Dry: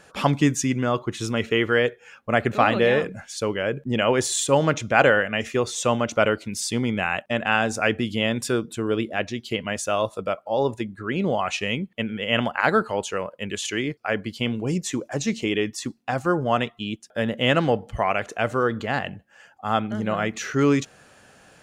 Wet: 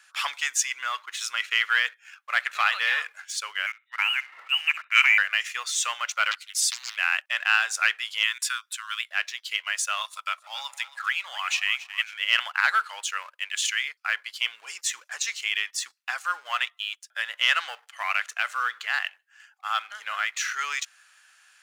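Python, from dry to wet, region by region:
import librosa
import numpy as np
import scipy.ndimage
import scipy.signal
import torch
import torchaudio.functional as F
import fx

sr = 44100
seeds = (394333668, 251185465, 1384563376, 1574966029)

y = fx.chain(x, sr, fx.ellip_highpass(hz=900.0, order=4, stop_db=40),
    fx.room_flutter(wall_m=11.0, rt60_s=0.22),
    fx.freq_invert(carrier_hz=3800), at=(3.66, 5.18))
y = fx.chain(y, sr, fx.highpass(hz=1200.0, slope=12),
    fx.high_shelf(hz=10000.0, db=5.5),
    fx.doppler_dist(depth_ms=0.78), at=(6.31, 6.97))
y = fx.chain(y, sr, fx.steep_highpass(hz=930.0, slope=72),
    fx.band_squash(depth_pct=40), at=(8.23, 9.11))
y = fx.chain(y, sr, fx.highpass(hz=680.0, slope=24),
    fx.echo_split(split_hz=980.0, low_ms=147, high_ms=272, feedback_pct=52, wet_db=-16),
    fx.band_squash(depth_pct=70), at=(10.01, 12.14))
y = fx.leveller(y, sr, passes=1)
y = scipy.signal.sosfilt(scipy.signal.butter(4, 1300.0, 'highpass', fs=sr, output='sos'), y)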